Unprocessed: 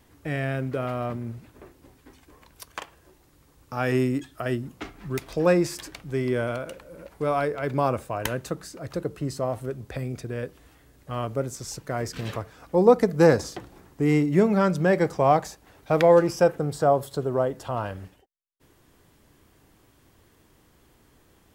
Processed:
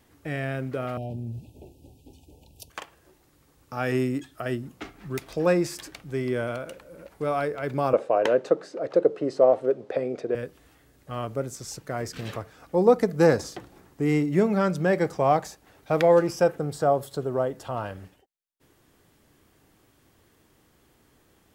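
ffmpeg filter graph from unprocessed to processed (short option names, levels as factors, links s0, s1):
-filter_complex "[0:a]asettb=1/sr,asplit=3[s0][s1][s2];[s0]atrim=end=0.974[s3];[s1]atrim=start=0.97:end=2.7,asetpts=PTS-STARTPTS,afade=t=in:d=0.004:c=qsin,afade=t=out:st=1.726:d=0.004:c=qsin,equalizer=f=80:t=o:w=2.2:g=10.5,acompressor=threshold=0.0398:ratio=2.5:attack=3.2:release=140:knee=1:detection=peak,asuperstop=centerf=1500:order=20:qfactor=0.94[s4];[s2]atrim=start=2.696[s5];[s3][s4]acrossfade=d=0.004:c1=hsin:c2=qsin[s6];[s6][s5]acrossfade=d=0.004:c1=qsin:c2=hsin,asettb=1/sr,asplit=3[s7][s8][s9];[s7]atrim=end=7.934[s10];[s8]atrim=start=7.93:end=10.35,asetpts=PTS-STARTPTS,afade=t=in:d=0.004:c=qsin,afade=t=out:st=2.416:d=0.004:c=qsin,highpass=230,lowpass=4600,equalizer=f=510:w=1:g=14.5[s11];[s9]atrim=start=10.346[s12];[s10][s11]acrossfade=d=0.004:c1=hsin:c2=qsin[s13];[s13][s12]acrossfade=d=0.004:c1=qsin:c2=hsin,lowshelf=f=71:g=-6.5,bandreject=f=1000:w=20,volume=0.841"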